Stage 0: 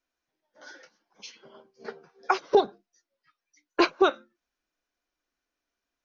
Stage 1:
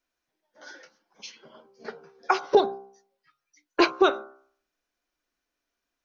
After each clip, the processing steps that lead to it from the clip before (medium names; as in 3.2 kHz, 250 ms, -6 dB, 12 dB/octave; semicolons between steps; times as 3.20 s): de-hum 65.79 Hz, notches 23; trim +2 dB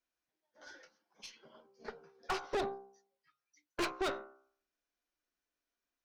valve stage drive 26 dB, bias 0.7; trim -4.5 dB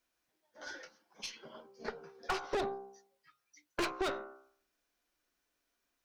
compression 2:1, threshold -45 dBFS, peak gain reduction 8 dB; trim +8 dB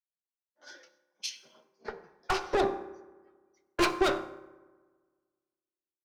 on a send at -8 dB: reverberation RT60 3.1 s, pre-delay 3 ms; on the sum: three bands expanded up and down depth 100%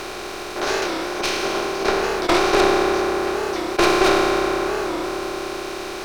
spectral levelling over time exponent 0.2; warped record 45 rpm, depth 160 cents; trim +4 dB